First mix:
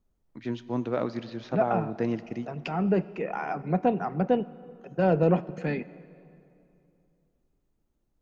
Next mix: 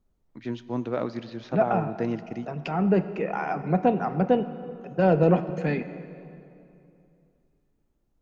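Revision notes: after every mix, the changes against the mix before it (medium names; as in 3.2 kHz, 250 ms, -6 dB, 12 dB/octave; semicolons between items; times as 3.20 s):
second voice: send +9.0 dB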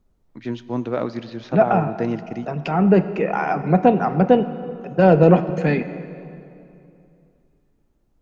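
first voice +4.5 dB; second voice +7.0 dB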